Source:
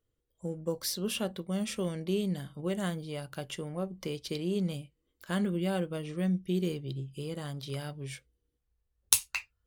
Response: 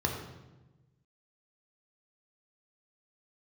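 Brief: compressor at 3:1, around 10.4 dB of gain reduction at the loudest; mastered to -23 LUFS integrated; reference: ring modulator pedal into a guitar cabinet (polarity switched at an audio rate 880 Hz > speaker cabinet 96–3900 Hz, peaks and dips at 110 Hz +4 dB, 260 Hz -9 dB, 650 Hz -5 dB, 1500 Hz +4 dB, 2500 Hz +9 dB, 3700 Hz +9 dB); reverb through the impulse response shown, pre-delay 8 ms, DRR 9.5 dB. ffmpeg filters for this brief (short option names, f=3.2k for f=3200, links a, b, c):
-filter_complex "[0:a]acompressor=threshold=-35dB:ratio=3,asplit=2[a][b];[1:a]atrim=start_sample=2205,adelay=8[c];[b][c]afir=irnorm=-1:irlink=0,volume=-17.5dB[d];[a][d]amix=inputs=2:normalize=0,aeval=exprs='val(0)*sgn(sin(2*PI*880*n/s))':c=same,highpass=96,equalizer=f=110:t=q:w=4:g=4,equalizer=f=260:t=q:w=4:g=-9,equalizer=f=650:t=q:w=4:g=-5,equalizer=f=1.5k:t=q:w=4:g=4,equalizer=f=2.5k:t=q:w=4:g=9,equalizer=f=3.7k:t=q:w=4:g=9,lowpass=f=3.9k:w=0.5412,lowpass=f=3.9k:w=1.3066,volume=10.5dB"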